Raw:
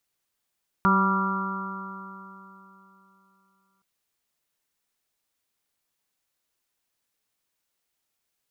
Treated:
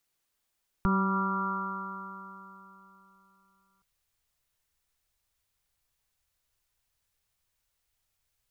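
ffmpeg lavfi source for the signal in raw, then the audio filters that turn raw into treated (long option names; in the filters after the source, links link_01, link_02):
-f lavfi -i "aevalsrc='0.0944*pow(10,-3*t/3.29)*sin(2*PI*191.13*t)+0.0299*pow(10,-3*t/3.29)*sin(2*PI*383.07*t)+0.0112*pow(10,-3*t/3.29)*sin(2*PI*576.6*t)+0.0119*pow(10,-3*t/3.29)*sin(2*PI*772.51*t)+0.0708*pow(10,-3*t/3.29)*sin(2*PI*971.57*t)+0.0841*pow(10,-3*t/3.29)*sin(2*PI*1174.52*t)+0.0794*pow(10,-3*t/3.29)*sin(2*PI*1382.1*t)':duration=2.97:sample_rate=44100"
-filter_complex "[0:a]asubboost=boost=11:cutoff=77,acrossover=split=440[link_01][link_02];[link_02]alimiter=limit=-24dB:level=0:latency=1:release=173[link_03];[link_01][link_03]amix=inputs=2:normalize=0"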